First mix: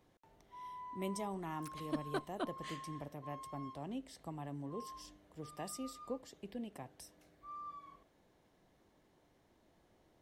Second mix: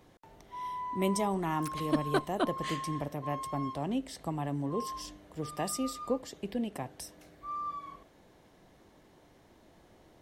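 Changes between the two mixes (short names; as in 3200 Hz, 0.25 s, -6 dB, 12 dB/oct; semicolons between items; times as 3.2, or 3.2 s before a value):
speech +10.5 dB; background +9.5 dB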